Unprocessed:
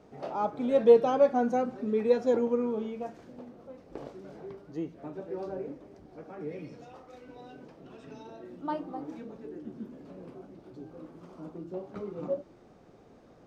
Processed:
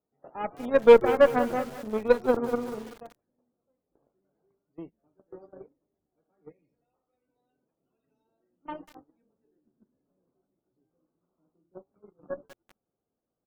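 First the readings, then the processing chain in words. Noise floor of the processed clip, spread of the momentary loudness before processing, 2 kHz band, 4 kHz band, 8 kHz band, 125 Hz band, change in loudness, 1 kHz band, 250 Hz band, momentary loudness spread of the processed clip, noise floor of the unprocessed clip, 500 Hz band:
below −85 dBFS, 23 LU, +10.5 dB, +6.5 dB, can't be measured, −2.5 dB, +6.0 dB, +1.5 dB, −1.5 dB, 24 LU, −56 dBFS, +2.5 dB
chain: harmonic generator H 2 −12 dB, 7 −19 dB, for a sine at −8 dBFS
on a send: echo with shifted repeats 143 ms, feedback 42%, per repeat −110 Hz, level −21 dB
on the sum: noise gate −47 dBFS, range −22 dB
spectral peaks only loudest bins 64
in parallel at −5 dB: hard clipping −17.5 dBFS, distortion −8 dB
on the sum: feedback echo at a low word length 190 ms, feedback 55%, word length 6 bits, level −13.5 dB
level +1 dB

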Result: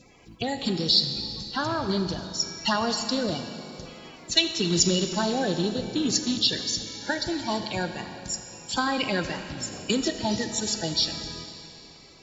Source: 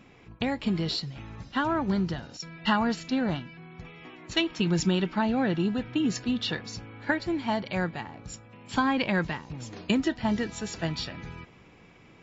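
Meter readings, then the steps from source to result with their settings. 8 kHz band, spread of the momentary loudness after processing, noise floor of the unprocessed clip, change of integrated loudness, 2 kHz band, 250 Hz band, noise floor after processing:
can't be measured, 14 LU, −55 dBFS, +2.5 dB, −0.5 dB, −1.5 dB, −49 dBFS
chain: spectral magnitudes quantised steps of 30 dB
high shelf with overshoot 3,200 Hz +11 dB, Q 1.5
four-comb reverb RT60 3 s, combs from 29 ms, DRR 7.5 dB

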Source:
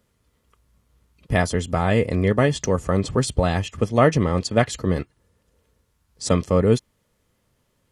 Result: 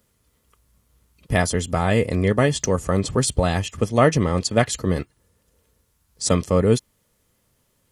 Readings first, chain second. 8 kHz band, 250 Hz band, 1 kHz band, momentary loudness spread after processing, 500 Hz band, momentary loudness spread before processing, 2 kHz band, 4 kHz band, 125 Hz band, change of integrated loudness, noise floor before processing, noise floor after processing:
+5.5 dB, 0.0 dB, 0.0 dB, 6 LU, 0.0 dB, 7 LU, +0.5 dB, +2.5 dB, 0.0 dB, +0.5 dB, −69 dBFS, −67 dBFS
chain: high-shelf EQ 6,500 Hz +10 dB

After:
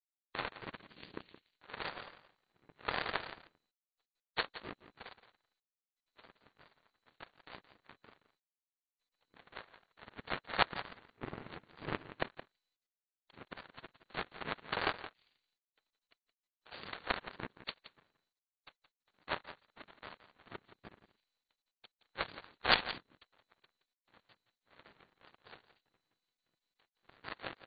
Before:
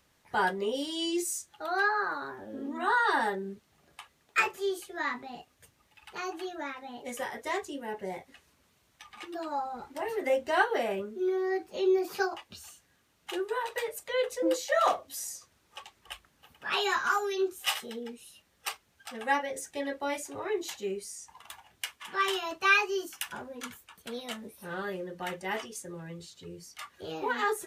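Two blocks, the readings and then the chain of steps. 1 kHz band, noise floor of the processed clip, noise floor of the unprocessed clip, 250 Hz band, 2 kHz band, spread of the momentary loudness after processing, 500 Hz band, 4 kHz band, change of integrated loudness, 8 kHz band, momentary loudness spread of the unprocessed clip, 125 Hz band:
−12.0 dB, below −85 dBFS, −69 dBFS, −15.5 dB, −10.5 dB, 21 LU, −17.0 dB, −5.5 dB, −8.5 dB, below −40 dB, 18 LU, can't be measured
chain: bass and treble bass −12 dB, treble +2 dB
in parallel at +2 dB: downward compressor 6 to 1, threshold −36 dBFS, peak gain reduction 16.5 dB
on the sum: cochlear-implant simulation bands 3
power curve on the samples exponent 3
on a send: single-tap delay 171 ms −13.5 dB
on the sum: level +5.5 dB
MP2 48 kbit/s 16,000 Hz

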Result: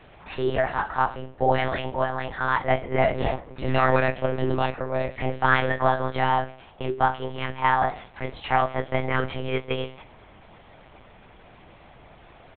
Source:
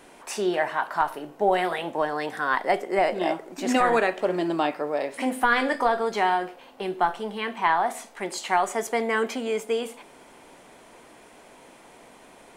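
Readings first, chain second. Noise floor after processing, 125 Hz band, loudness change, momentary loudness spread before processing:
−51 dBFS, +15.0 dB, +0.5 dB, 8 LU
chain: ambience of single reflections 21 ms −6.5 dB, 35 ms −16.5 dB
one-pitch LPC vocoder at 8 kHz 130 Hz

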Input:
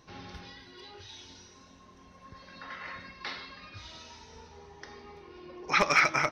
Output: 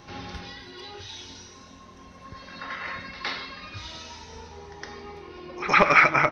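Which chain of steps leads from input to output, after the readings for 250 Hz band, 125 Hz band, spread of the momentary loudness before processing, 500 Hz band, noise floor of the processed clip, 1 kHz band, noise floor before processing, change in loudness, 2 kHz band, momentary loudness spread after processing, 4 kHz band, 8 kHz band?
+7.5 dB, +7.5 dB, 24 LU, +7.5 dB, −48 dBFS, +7.5 dB, −56 dBFS, +6.0 dB, +6.5 dB, 24 LU, +3.0 dB, −1.0 dB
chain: treble cut that deepens with the level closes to 2,800 Hz, closed at −27 dBFS
echo ahead of the sound 113 ms −14.5 dB
level +7.5 dB

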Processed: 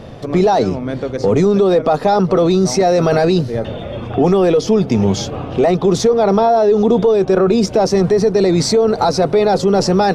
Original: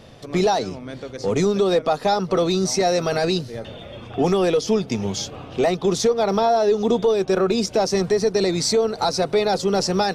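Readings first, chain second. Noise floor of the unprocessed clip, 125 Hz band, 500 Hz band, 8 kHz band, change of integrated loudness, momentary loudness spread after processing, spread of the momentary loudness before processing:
−39 dBFS, +9.5 dB, +6.5 dB, +1.5 dB, +6.5 dB, 7 LU, 10 LU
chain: high-shelf EQ 2,000 Hz −11.5 dB
in parallel at −1 dB: compressor whose output falls as the input rises −25 dBFS, ratio −1
on the sum: level +4.5 dB

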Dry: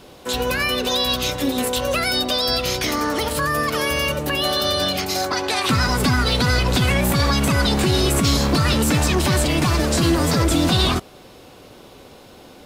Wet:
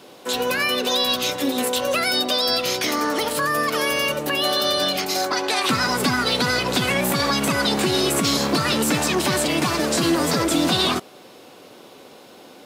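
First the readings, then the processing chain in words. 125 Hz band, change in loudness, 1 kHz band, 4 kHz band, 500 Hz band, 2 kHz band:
−9.5 dB, −1.0 dB, 0.0 dB, 0.0 dB, 0.0 dB, 0.0 dB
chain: high-pass filter 210 Hz 12 dB per octave

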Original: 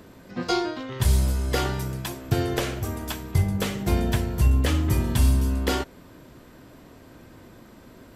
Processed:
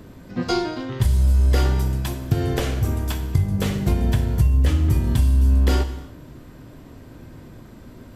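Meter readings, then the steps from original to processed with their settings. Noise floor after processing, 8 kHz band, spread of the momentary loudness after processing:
−43 dBFS, −2.5 dB, 8 LU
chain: low-shelf EQ 220 Hz +10.5 dB
downward compressor 6 to 1, threshold −15 dBFS, peak gain reduction 10 dB
reverb whose tail is shaped and stops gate 350 ms falling, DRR 8.5 dB

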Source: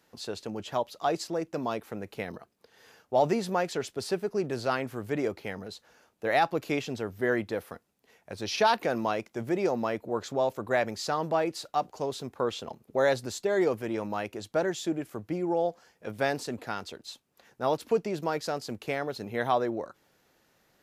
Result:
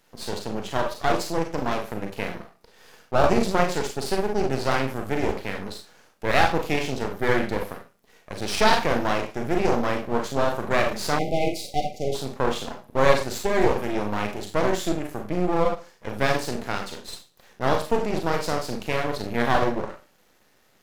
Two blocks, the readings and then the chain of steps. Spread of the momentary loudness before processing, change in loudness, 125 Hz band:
12 LU, +5.0 dB, +8.5 dB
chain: four-comb reverb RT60 0.33 s, combs from 30 ms, DRR 1 dB
half-wave rectification
time-frequency box erased 0:11.19–0:12.15, 800–2,000 Hz
level +7 dB

